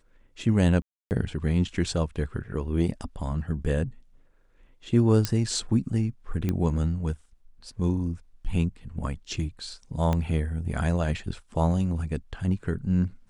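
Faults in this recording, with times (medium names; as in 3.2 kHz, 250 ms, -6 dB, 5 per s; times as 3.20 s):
0.82–1.11 s: dropout 289 ms
5.25 s: pop -10 dBFS
6.49 s: pop -15 dBFS
10.13 s: pop -14 dBFS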